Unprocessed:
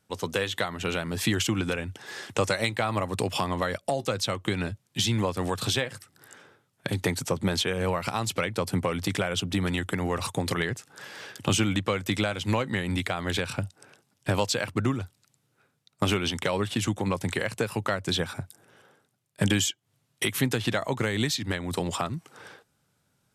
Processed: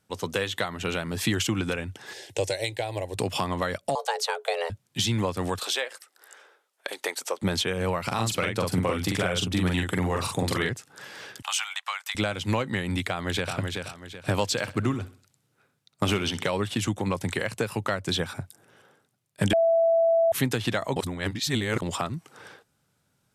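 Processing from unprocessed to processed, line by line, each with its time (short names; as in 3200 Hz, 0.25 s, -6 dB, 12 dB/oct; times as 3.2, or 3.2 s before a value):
2.13–3.17 fixed phaser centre 510 Hz, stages 4
3.95–4.7 frequency shift +330 Hz
5.59–7.42 HPF 440 Hz 24 dB/oct
8.07–10.69 doubler 44 ms -3 dB
11.42–12.15 steep high-pass 770 Hz 48 dB/oct
13.09–13.54 echo throw 0.38 s, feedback 35%, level -4.5 dB
14.51–16.5 feedback echo 64 ms, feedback 41%, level -16 dB
19.53–20.32 bleep 663 Hz -17.5 dBFS
20.96–21.82 reverse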